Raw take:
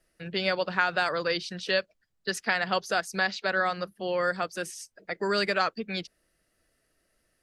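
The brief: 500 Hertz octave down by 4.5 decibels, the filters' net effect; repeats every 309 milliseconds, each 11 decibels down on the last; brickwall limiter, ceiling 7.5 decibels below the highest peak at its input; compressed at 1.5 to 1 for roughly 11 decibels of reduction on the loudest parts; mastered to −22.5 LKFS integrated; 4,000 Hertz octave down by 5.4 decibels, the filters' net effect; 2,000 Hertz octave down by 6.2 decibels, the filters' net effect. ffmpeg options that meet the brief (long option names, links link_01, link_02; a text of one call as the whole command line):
ffmpeg -i in.wav -af "equalizer=frequency=500:width_type=o:gain=-5,equalizer=frequency=2000:width_type=o:gain=-7.5,equalizer=frequency=4000:width_type=o:gain=-4.5,acompressor=threshold=-57dB:ratio=1.5,alimiter=level_in=9dB:limit=-24dB:level=0:latency=1,volume=-9dB,aecho=1:1:309|618|927:0.282|0.0789|0.0221,volume=22.5dB" out.wav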